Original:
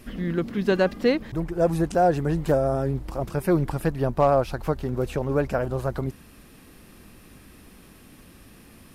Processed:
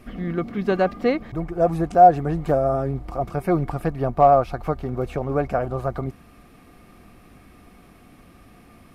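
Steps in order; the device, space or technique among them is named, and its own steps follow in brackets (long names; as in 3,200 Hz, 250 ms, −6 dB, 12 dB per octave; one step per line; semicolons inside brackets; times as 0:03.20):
inside a helmet (high-shelf EQ 3,200 Hz −8.5 dB; hollow resonant body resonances 720/1,200/2,200 Hz, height 12 dB, ringing for 55 ms)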